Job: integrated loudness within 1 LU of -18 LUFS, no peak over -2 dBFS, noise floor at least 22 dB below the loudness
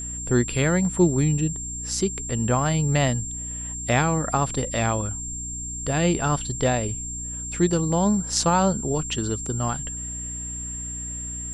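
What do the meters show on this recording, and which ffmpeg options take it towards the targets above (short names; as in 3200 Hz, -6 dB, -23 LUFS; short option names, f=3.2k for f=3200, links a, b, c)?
hum 60 Hz; harmonics up to 300 Hz; hum level -34 dBFS; steady tone 7400 Hz; tone level -31 dBFS; loudness -24.0 LUFS; peak -4.0 dBFS; loudness target -18.0 LUFS
-> -af "bandreject=f=60:t=h:w=6,bandreject=f=120:t=h:w=6,bandreject=f=180:t=h:w=6,bandreject=f=240:t=h:w=6,bandreject=f=300:t=h:w=6"
-af "bandreject=f=7.4k:w=30"
-af "volume=6dB,alimiter=limit=-2dB:level=0:latency=1"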